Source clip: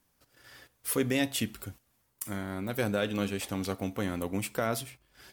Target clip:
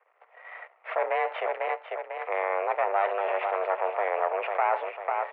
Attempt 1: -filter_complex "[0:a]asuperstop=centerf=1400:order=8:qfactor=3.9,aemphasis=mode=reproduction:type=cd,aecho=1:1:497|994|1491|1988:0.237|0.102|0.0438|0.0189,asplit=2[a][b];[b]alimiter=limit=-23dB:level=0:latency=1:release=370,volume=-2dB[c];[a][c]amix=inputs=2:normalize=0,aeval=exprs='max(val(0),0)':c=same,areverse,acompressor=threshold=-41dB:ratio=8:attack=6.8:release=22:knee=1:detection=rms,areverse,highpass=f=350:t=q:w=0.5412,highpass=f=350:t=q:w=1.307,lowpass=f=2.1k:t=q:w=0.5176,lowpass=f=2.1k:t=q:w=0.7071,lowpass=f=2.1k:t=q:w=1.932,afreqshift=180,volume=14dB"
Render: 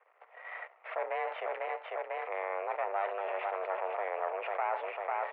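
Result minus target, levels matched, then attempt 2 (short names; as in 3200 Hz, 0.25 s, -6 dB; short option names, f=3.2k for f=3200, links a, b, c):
compressor: peak gain reduction +8 dB
-filter_complex "[0:a]asuperstop=centerf=1400:order=8:qfactor=3.9,aemphasis=mode=reproduction:type=cd,aecho=1:1:497|994|1491|1988:0.237|0.102|0.0438|0.0189,asplit=2[a][b];[b]alimiter=limit=-23dB:level=0:latency=1:release=370,volume=-2dB[c];[a][c]amix=inputs=2:normalize=0,aeval=exprs='max(val(0),0)':c=same,areverse,acompressor=threshold=-32dB:ratio=8:attack=6.8:release=22:knee=1:detection=rms,areverse,highpass=f=350:t=q:w=0.5412,highpass=f=350:t=q:w=1.307,lowpass=f=2.1k:t=q:w=0.5176,lowpass=f=2.1k:t=q:w=0.7071,lowpass=f=2.1k:t=q:w=1.932,afreqshift=180,volume=14dB"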